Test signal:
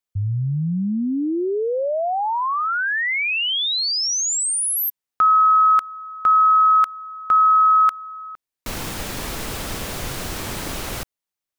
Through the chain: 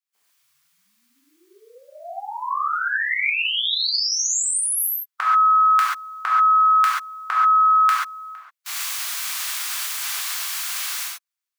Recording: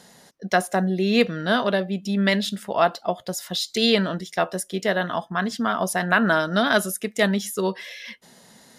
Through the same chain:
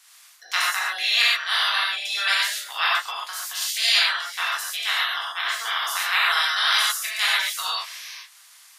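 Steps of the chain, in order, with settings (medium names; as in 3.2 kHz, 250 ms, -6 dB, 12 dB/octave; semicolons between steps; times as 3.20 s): spectral peaks clipped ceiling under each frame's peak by 25 dB; high-pass 1 kHz 24 dB/octave; gated-style reverb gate 160 ms flat, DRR -6.5 dB; trim -6 dB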